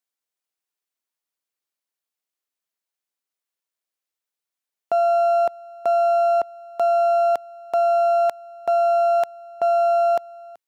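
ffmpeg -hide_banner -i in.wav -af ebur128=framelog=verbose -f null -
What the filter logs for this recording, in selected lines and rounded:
Integrated loudness:
  I:         -20.2 LUFS
  Threshold: -30.4 LUFS
Loudness range:
  LRA:         5.2 LU
  Threshold: -41.4 LUFS
  LRA low:   -25.4 LUFS
  LRA high:  -20.1 LUFS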